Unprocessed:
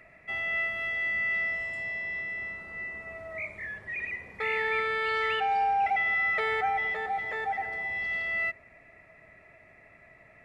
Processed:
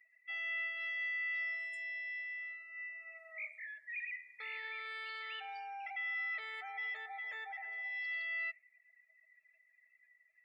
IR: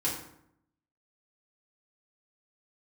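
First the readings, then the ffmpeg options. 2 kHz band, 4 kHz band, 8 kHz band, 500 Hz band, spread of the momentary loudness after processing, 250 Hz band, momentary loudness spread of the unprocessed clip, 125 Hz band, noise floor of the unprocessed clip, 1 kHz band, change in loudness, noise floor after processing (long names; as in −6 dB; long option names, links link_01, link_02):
−9.5 dB, −8.0 dB, can't be measured, −24.5 dB, 9 LU, below −40 dB, 11 LU, below −40 dB, −57 dBFS, −19.0 dB, −10.5 dB, −72 dBFS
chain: -af "alimiter=level_in=1dB:limit=-24dB:level=0:latency=1:release=95,volume=-1dB,aderivative,afftdn=noise_reduction=22:noise_floor=-59,volume=3dB"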